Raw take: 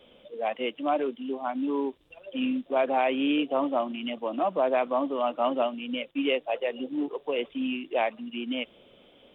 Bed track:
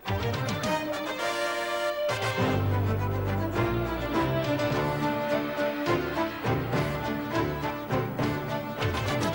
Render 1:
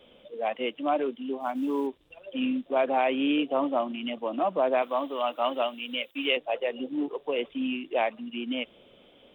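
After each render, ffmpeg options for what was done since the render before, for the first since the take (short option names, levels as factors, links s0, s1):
-filter_complex "[0:a]asettb=1/sr,asplit=3[s0][s1][s2];[s0]atrim=end=1.404[s3];[s1]atrim=start=1.4:end=1.87,asetpts=PTS-STARTPTS,afade=t=in:d=0.004:c=qsin,afade=t=out:st=0.466:d=0.004:c=qsin,acrusher=bits=9:mode=log:mix=0:aa=0.000001[s4];[s2]atrim=start=1.866[s5];[s3][s4]acrossfade=d=0.004:c1=hsin:c2=qsin[s6];[s6][s5]acrossfade=d=0.004:c1=qsin:c2=hsin,asettb=1/sr,asplit=3[s7][s8][s9];[s7]atrim=end=4.824[s10];[s8]atrim=start=4.82:end=6.37,asetpts=PTS-STARTPTS,afade=t=in:d=0.004:c=qsin,afade=t=out:st=1.546:d=0.004:c=qsin,aemphasis=mode=production:type=riaa[s11];[s9]atrim=start=6.366[s12];[s10][s11]acrossfade=d=0.004:c1=hsin:c2=qsin[s13];[s13][s12]acrossfade=d=0.004:c1=qsin:c2=hsin"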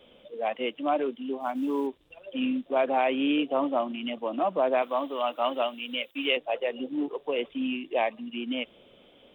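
-filter_complex "[0:a]asettb=1/sr,asplit=3[s0][s1][s2];[s0]atrim=end=7.764[s3];[s1]atrim=start=7.76:end=8.28,asetpts=PTS-STARTPTS,afade=t=in:d=0.004:c=qsin,afade=t=out:st=0.516:d=0.004:c=qsin,asuperstop=centerf=1400:order=4:qfactor=5.3[s4];[s2]atrim=start=8.276[s5];[s3][s4]acrossfade=d=0.004:c1=hsin:c2=qsin[s6];[s6][s5]acrossfade=d=0.004:c1=qsin:c2=hsin"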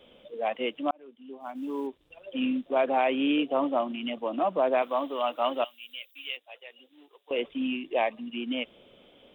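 -filter_complex "[0:a]asettb=1/sr,asplit=3[s0][s1][s2];[s0]atrim=end=5.644[s3];[s1]atrim=start=5.64:end=7.31,asetpts=PTS-STARTPTS,afade=t=in:d=0.004:c=qsin,afade=t=out:st=1.666:d=0.004:c=qsin,aderivative[s4];[s2]atrim=start=7.306[s5];[s3][s4]acrossfade=d=0.004:c1=hsin:c2=qsin[s6];[s6][s5]acrossfade=d=0.004:c1=qsin:c2=hsin,asplit=2[s7][s8];[s7]atrim=end=0.91,asetpts=PTS-STARTPTS,afade=t=out:st=0.906:d=0.004:c=hsin[s9];[s8]atrim=start=0.91,asetpts=PTS-STARTPTS,afade=t=in:d=1.44[s10];[s9][s10]concat=n=2:v=0:a=1"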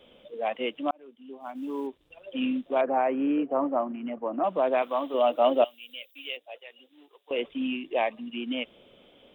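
-filter_complex "[0:a]asettb=1/sr,asplit=3[s0][s1][s2];[s0]atrim=end=2.814[s3];[s1]atrim=start=2.81:end=4.44,asetpts=PTS-STARTPTS,afade=t=in:d=0.004:c=qsin,afade=t=out:st=1.626:d=0.004:c=qsin,lowpass=f=1800:w=0.5412,lowpass=f=1800:w=1.3066[s4];[s2]atrim=start=4.436[s5];[s3][s4]acrossfade=d=0.004:c1=hsin:c2=qsin[s6];[s6][s5]acrossfade=d=0.004:c1=qsin:c2=hsin,asettb=1/sr,asplit=3[s7][s8][s9];[s7]atrim=end=5.144[s10];[s8]atrim=start=5.14:end=6.58,asetpts=PTS-STARTPTS,afade=t=in:d=0.004:c=qsin,afade=t=out:st=1.436:d=0.004:c=qsin,lowshelf=f=790:t=q:w=1.5:g=6.5[s11];[s9]atrim=start=6.576[s12];[s10][s11]acrossfade=d=0.004:c1=hsin:c2=qsin[s13];[s13][s12]acrossfade=d=0.004:c1=qsin:c2=hsin"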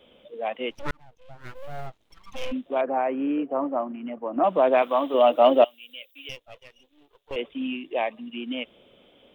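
-filter_complex "[0:a]asplit=3[s0][s1][s2];[s0]afade=t=out:st=0.7:d=0.02[s3];[s1]aeval=exprs='abs(val(0))':c=same,afade=t=in:st=0.7:d=0.02,afade=t=out:st=2.51:d=0.02[s4];[s2]afade=t=in:st=2.51:d=0.02[s5];[s3][s4][s5]amix=inputs=3:normalize=0,asettb=1/sr,asplit=3[s6][s7][s8];[s6]atrim=end=4.364[s9];[s7]atrim=start=4.36:end=5.65,asetpts=PTS-STARTPTS,afade=t=in:d=0.004:c=qsin,afade=t=out:st=1.286:d=0.004:c=qsin,acontrast=35[s10];[s8]atrim=start=5.646[s11];[s9][s10]acrossfade=d=0.004:c1=hsin:c2=qsin[s12];[s12][s11]acrossfade=d=0.004:c1=qsin:c2=hsin,asettb=1/sr,asplit=3[s13][s14][s15];[s13]atrim=end=6.294[s16];[s14]atrim=start=6.29:end=7.36,asetpts=PTS-STARTPTS,afade=t=in:d=0.004:c=qsin,afade=t=out:st=1.066:d=0.004:c=qsin,aeval=exprs='if(lt(val(0),0),0.251*val(0),val(0))':c=same[s17];[s15]atrim=start=7.356[s18];[s16][s17]acrossfade=d=0.004:c1=hsin:c2=qsin[s19];[s19][s18]acrossfade=d=0.004:c1=qsin:c2=hsin"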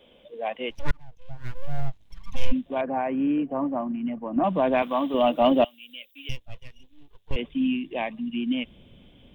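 -af "bandreject=f=1300:w=8.1,asubboost=boost=10.5:cutoff=150"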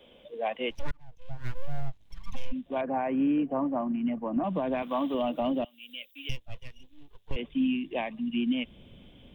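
-filter_complex "[0:a]acrossover=split=290[s0][s1];[s1]acompressor=threshold=0.0631:ratio=6[s2];[s0][s2]amix=inputs=2:normalize=0,alimiter=limit=0.1:level=0:latency=1:release=339"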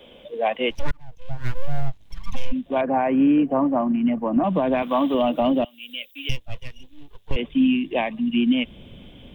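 -af "volume=2.66"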